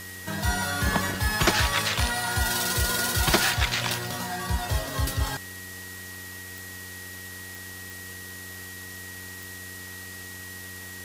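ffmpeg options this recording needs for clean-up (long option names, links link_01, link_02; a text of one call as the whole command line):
ffmpeg -i in.wav -af "adeclick=threshold=4,bandreject=frequency=92.4:width_type=h:width=4,bandreject=frequency=184.8:width_type=h:width=4,bandreject=frequency=277.2:width_type=h:width=4,bandreject=frequency=369.6:width_type=h:width=4,bandreject=frequency=462:width_type=h:width=4,bandreject=frequency=1900:width=30,afwtdn=0.0079" out.wav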